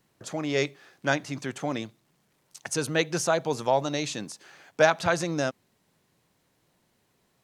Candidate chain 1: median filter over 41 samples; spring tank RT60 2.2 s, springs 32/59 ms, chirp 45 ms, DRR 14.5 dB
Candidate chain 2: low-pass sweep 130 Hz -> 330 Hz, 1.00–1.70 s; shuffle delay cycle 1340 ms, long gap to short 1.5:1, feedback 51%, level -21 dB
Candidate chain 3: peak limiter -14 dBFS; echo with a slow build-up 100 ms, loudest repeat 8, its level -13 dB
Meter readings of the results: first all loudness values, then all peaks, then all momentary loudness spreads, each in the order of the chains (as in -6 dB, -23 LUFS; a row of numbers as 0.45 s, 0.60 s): -32.0 LUFS, -29.5 LUFS, -29.5 LUFS; -13.0 dBFS, -13.5 dBFS, -11.0 dBFS; 11 LU, 21 LU, 8 LU